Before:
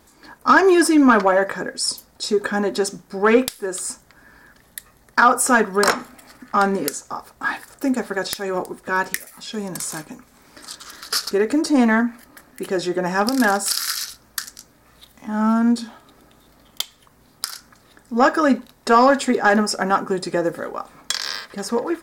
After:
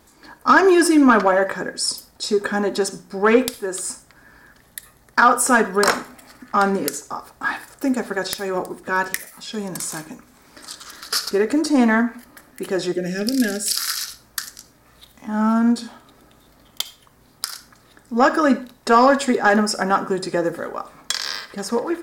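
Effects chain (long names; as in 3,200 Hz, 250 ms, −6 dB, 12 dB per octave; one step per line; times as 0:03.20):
0:12.92–0:13.76: Butterworth band-reject 1,000 Hz, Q 0.65
convolution reverb RT60 0.35 s, pre-delay 47 ms, DRR 15.5 dB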